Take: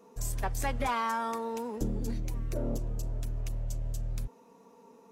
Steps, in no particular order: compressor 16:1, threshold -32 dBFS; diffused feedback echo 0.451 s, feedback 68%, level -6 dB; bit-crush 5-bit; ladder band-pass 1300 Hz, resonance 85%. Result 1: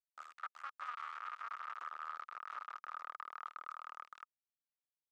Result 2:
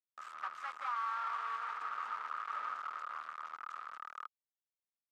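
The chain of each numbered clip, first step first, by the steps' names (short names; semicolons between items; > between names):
diffused feedback echo > compressor > bit-crush > ladder band-pass; diffused feedback echo > bit-crush > ladder band-pass > compressor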